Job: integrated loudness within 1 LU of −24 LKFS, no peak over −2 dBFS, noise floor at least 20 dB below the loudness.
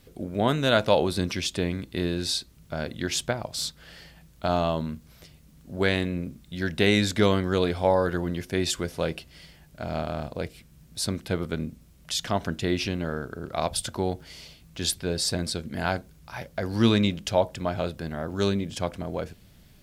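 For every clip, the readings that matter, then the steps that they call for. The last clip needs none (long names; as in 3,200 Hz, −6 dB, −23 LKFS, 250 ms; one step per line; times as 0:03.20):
integrated loudness −27.5 LKFS; sample peak −6.0 dBFS; target loudness −24.0 LKFS
→ level +3.5 dB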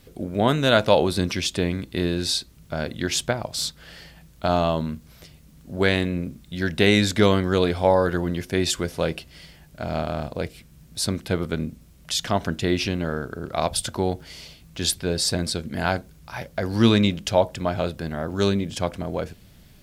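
integrated loudness −24.0 LKFS; sample peak −2.5 dBFS; background noise floor −51 dBFS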